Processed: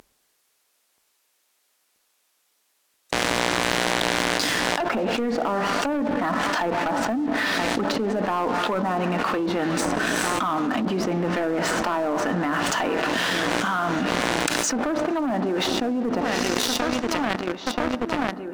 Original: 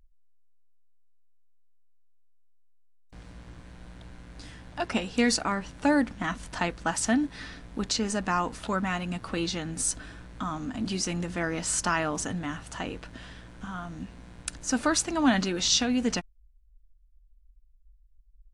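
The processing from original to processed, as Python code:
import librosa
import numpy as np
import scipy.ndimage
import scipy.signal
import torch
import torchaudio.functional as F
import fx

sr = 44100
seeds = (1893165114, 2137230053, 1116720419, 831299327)

p1 = fx.echo_filtered(x, sr, ms=980, feedback_pct=73, hz=1700.0, wet_db=-21.5)
p2 = fx.rider(p1, sr, range_db=4, speed_s=0.5)
p3 = p1 + (p2 * librosa.db_to_amplitude(0.0))
p4 = fx.rev_plate(p3, sr, seeds[0], rt60_s=1.7, hf_ratio=0.8, predelay_ms=0, drr_db=13.0)
p5 = fx.env_lowpass_down(p4, sr, base_hz=740.0, full_db=-18.0)
p6 = scipy.signal.sosfilt(scipy.signal.butter(2, 340.0, 'highpass', fs=sr, output='sos'), p5)
p7 = fx.leveller(p6, sr, passes=3)
p8 = fx.env_flatten(p7, sr, amount_pct=100)
y = p8 * librosa.db_to_amplitude(-12.0)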